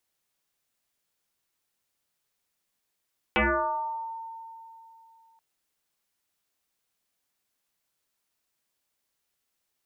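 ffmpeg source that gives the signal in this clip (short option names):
-f lavfi -i "aevalsrc='0.112*pow(10,-3*t/3.03)*sin(2*PI*906*t+7.2*pow(10,-3*t/1.02)*sin(2*PI*0.31*906*t))':d=2.03:s=44100"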